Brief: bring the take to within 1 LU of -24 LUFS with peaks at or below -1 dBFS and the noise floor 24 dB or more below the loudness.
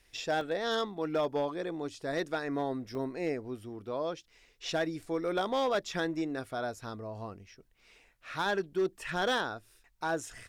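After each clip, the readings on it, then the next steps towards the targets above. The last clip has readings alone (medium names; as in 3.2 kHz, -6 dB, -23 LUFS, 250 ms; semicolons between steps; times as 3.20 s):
clipped samples 0.8%; clipping level -23.5 dBFS; dropouts 2; longest dropout 2.1 ms; loudness -34.0 LUFS; peak level -23.5 dBFS; loudness target -24.0 LUFS
-> clip repair -23.5 dBFS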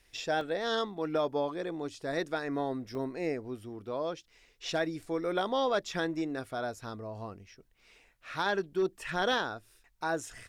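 clipped samples 0.0%; dropouts 2; longest dropout 2.1 ms
-> interpolate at 0.41/2.95 s, 2.1 ms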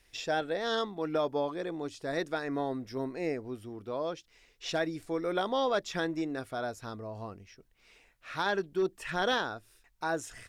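dropouts 0; loudness -33.5 LUFS; peak level -17.5 dBFS; loudness target -24.0 LUFS
-> trim +9.5 dB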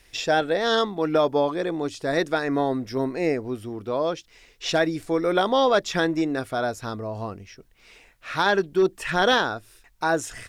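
loudness -24.0 LUFS; peak level -8.0 dBFS; noise floor -58 dBFS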